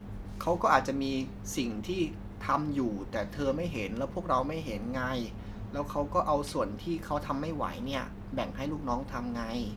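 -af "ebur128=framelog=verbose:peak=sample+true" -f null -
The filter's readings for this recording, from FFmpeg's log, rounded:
Integrated loudness:
  I:         -32.6 LUFS
  Threshold: -42.6 LUFS
Loudness range:
  LRA:         2.6 LU
  Threshold: -52.8 LUFS
  LRA low:   -33.7 LUFS
  LRA high:  -31.1 LUFS
Sample peak:
  Peak:       -8.5 dBFS
True peak:
  Peak:       -8.5 dBFS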